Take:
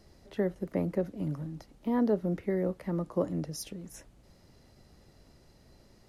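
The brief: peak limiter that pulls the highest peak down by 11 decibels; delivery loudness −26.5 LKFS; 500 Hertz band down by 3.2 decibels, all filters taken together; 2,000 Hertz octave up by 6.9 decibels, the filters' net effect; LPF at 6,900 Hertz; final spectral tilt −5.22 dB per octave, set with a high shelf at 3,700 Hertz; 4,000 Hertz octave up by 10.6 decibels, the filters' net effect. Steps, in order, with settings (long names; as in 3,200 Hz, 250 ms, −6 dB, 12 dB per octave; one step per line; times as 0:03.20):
low-pass filter 6,900 Hz
parametric band 500 Hz −4.5 dB
parametric band 2,000 Hz +4.5 dB
high-shelf EQ 3,700 Hz +8.5 dB
parametric band 4,000 Hz +8 dB
level +12.5 dB
brickwall limiter −16.5 dBFS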